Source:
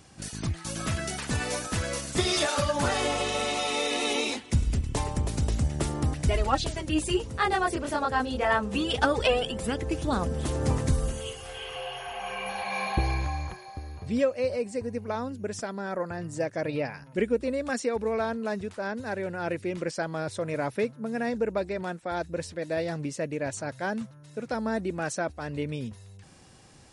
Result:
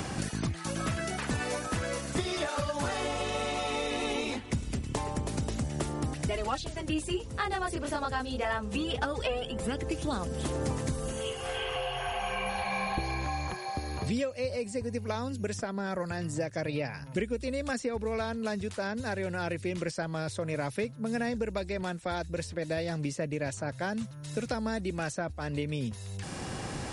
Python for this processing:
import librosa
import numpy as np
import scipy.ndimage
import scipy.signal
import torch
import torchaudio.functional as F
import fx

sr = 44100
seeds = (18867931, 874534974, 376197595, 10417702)

y = fx.band_squash(x, sr, depth_pct=100)
y = y * 10.0 ** (-4.5 / 20.0)